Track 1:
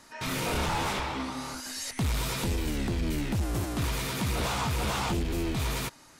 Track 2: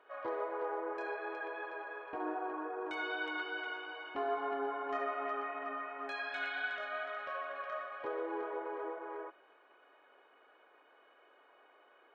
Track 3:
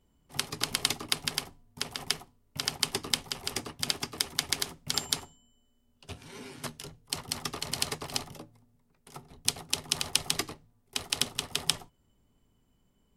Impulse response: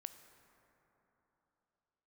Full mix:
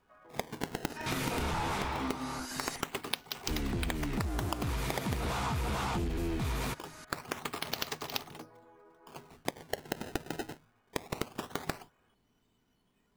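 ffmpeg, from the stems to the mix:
-filter_complex "[0:a]acompressor=mode=upward:threshold=0.01:ratio=2.5,adynamicequalizer=threshold=0.00501:dfrequency=2200:dqfactor=0.7:tfrequency=2200:tqfactor=0.7:attack=5:release=100:ratio=0.375:range=2.5:mode=cutabove:tftype=highshelf,adelay=850,volume=1.06,asplit=3[s0][s1][s2];[s0]atrim=end=2.81,asetpts=PTS-STARTPTS,afade=t=out:st=2.806:d=0.004:c=hsin[s3];[s1]atrim=start=2.81:end=3.48,asetpts=PTS-STARTPTS,volume=0[s4];[s2]atrim=start=3.48,asetpts=PTS-STARTPTS,afade=t=in:d=0.004:c=hsin[s5];[s3][s4][s5]concat=n=3:v=0:a=1[s6];[1:a]acompressor=threshold=0.00501:ratio=6,flanger=delay=17.5:depth=2.7:speed=0.33,volume=0.473[s7];[2:a]acrusher=samples=22:mix=1:aa=0.000001:lfo=1:lforange=35.2:lforate=0.22,lowshelf=f=130:g=-11.5,volume=1.06[s8];[s6][s7][s8]amix=inputs=3:normalize=0,bandreject=f=560:w=12,acompressor=threshold=0.0316:ratio=6"

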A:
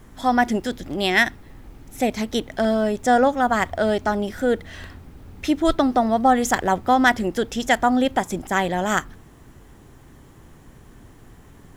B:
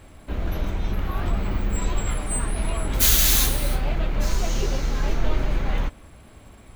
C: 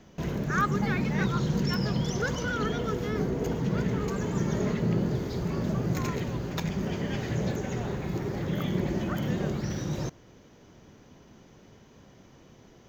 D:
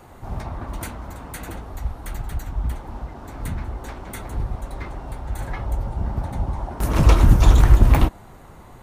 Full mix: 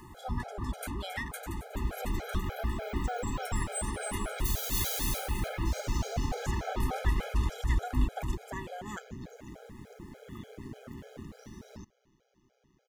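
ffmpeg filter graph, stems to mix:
-filter_complex "[0:a]acompressor=mode=upward:threshold=0.0562:ratio=2.5,volume=0.2[s0];[1:a]adelay=1450,volume=0.841,asplit=2[s1][s2];[s2]volume=0.266[s3];[2:a]aeval=exprs='val(0)*sin(2*PI*63*n/s)':c=same,adelay=1750,volume=0.316[s4];[3:a]volume=0.708,asplit=2[s5][s6];[s6]volume=0.2[s7];[s4][s5]amix=inputs=2:normalize=0,acompressor=threshold=0.0447:ratio=6,volume=1[s8];[s0][s1]amix=inputs=2:normalize=0,highpass=220,acompressor=threshold=0.0251:ratio=5,volume=1[s9];[s3][s7]amix=inputs=2:normalize=0,aecho=0:1:270|540|810:1|0.18|0.0324[s10];[s8][s9][s10]amix=inputs=3:normalize=0,afftfilt=real='re*gt(sin(2*PI*3.4*pts/sr)*(1-2*mod(floor(b*sr/1024/420),2)),0)':imag='im*gt(sin(2*PI*3.4*pts/sr)*(1-2*mod(floor(b*sr/1024/420),2)),0)':win_size=1024:overlap=0.75"

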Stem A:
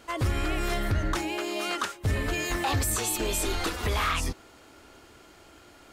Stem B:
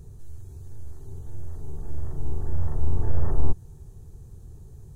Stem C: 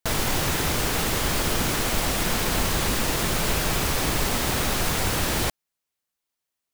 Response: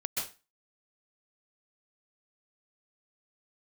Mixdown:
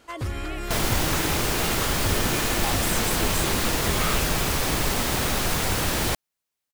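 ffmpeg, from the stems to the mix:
-filter_complex "[0:a]volume=0.708[s0];[2:a]adelay=650,volume=1[s1];[s0][s1]amix=inputs=2:normalize=0"

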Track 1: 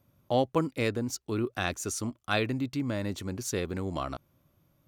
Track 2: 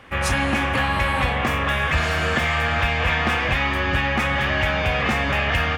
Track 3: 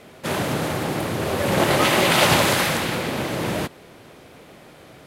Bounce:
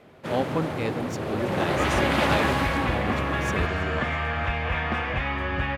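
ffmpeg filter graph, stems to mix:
-filter_complex "[0:a]volume=0.944,asplit=2[s0][s1];[s1]volume=0.119[s2];[1:a]aemphasis=mode=reproduction:type=cd,adelay=1650,volume=0.562[s3];[2:a]highshelf=f=4900:g=-7,volume=0.531[s4];[s2]aecho=0:1:325|650|975|1300|1625|1950|2275|2600|2925|3250:1|0.6|0.36|0.216|0.13|0.0778|0.0467|0.028|0.0168|0.0101[s5];[s0][s3][s4][s5]amix=inputs=4:normalize=0,highshelf=f=4200:g=-8.5"

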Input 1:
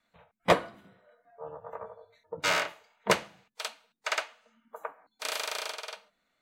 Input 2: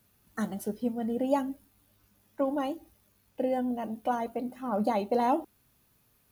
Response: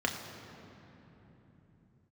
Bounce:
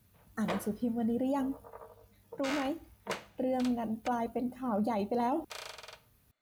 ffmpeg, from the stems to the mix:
-filter_complex "[0:a]volume=0.376,asplit=3[s0][s1][s2];[s0]atrim=end=4.08,asetpts=PTS-STARTPTS,afade=t=out:st=4.076:d=0.004:c=hsin[s3];[s1]atrim=start=4.08:end=5.5,asetpts=PTS-STARTPTS,volume=0[s4];[s2]atrim=start=5.5,asetpts=PTS-STARTPTS,afade=t=in:d=0.004:c=hsin[s5];[s3][s4][s5]concat=n=3:v=0:a=1[s6];[1:a]equalizer=f=68:t=o:w=2.6:g=10.5,volume=0.75[s7];[s6][s7]amix=inputs=2:normalize=0,alimiter=limit=0.0631:level=0:latency=1:release=20"

